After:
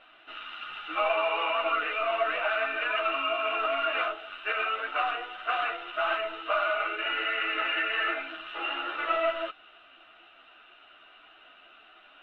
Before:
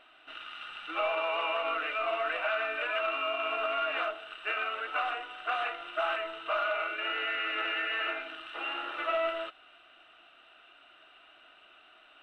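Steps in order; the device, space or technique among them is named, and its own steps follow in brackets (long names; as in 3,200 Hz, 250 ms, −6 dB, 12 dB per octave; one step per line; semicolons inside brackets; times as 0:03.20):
string-machine ensemble chorus (string-ensemble chorus; low-pass filter 4,100 Hz 12 dB per octave)
level +6.5 dB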